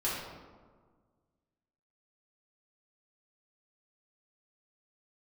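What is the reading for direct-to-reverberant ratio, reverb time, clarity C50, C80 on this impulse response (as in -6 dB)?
-9.0 dB, 1.6 s, 0.0 dB, 2.5 dB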